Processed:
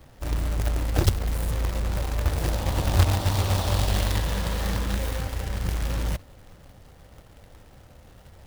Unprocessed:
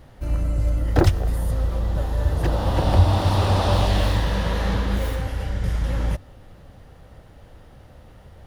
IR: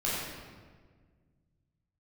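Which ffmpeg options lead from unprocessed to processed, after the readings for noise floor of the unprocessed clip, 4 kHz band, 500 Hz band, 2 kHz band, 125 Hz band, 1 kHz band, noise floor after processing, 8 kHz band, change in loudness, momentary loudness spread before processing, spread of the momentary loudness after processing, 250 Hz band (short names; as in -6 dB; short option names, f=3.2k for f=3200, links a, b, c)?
-47 dBFS, -1.0 dB, -6.0 dB, -2.0 dB, -4.0 dB, -6.0 dB, -51 dBFS, +5.0 dB, -4.0 dB, 8 LU, 7 LU, -5.5 dB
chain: -filter_complex "[0:a]acrossover=split=170|3000[a][b][c];[b]acompressor=threshold=-28dB:ratio=2.5[d];[a][d][c]amix=inputs=3:normalize=0,acrusher=bits=2:mode=log:mix=0:aa=0.000001,volume=-4dB"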